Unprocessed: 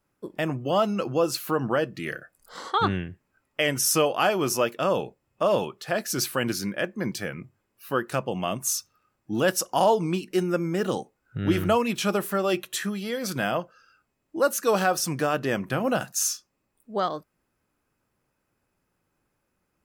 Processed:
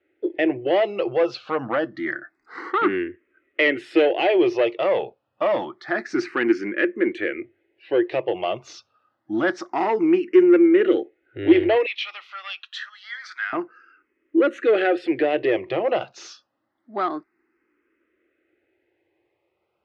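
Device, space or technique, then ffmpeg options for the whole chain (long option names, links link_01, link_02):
barber-pole phaser into a guitar amplifier: -filter_complex "[0:a]asplit=2[link_01][link_02];[link_02]afreqshift=0.27[link_03];[link_01][link_03]amix=inputs=2:normalize=1,asoftclip=type=tanh:threshold=-20.5dB,highpass=77,equalizer=frequency=170:width_type=q:width=4:gain=-8,equalizer=frequency=340:width_type=q:width=4:gain=10,equalizer=frequency=1000:width_type=q:width=4:gain=-5,equalizer=frequency=2000:width_type=q:width=4:gain=8,lowpass=frequency=3500:width=0.5412,lowpass=frequency=3500:width=1.3066,asettb=1/sr,asplit=3[link_04][link_05][link_06];[link_04]atrim=end=11.864[link_07];[link_05]atrim=start=11.86:end=13.53,asetpts=PTS-STARTPTS,afade=type=in:duration=0.004:curve=qsin,afade=type=out:start_time=1.666:duration=0.004:curve=qsin,highpass=frequency=1400:width=0.5412,highpass=frequency=1400:width=1.3066[link_08];[link_06]atrim=start=13.526[link_09];[link_07][link_08]acrossfade=duration=0.004:curve1=hsin:curve2=qsin[link_10];[link_10][link_09]acrossfade=duration=0.004:curve1=qsin:curve2=hsin,lowshelf=frequency=250:width_type=q:width=1.5:gain=-8,volume=6dB"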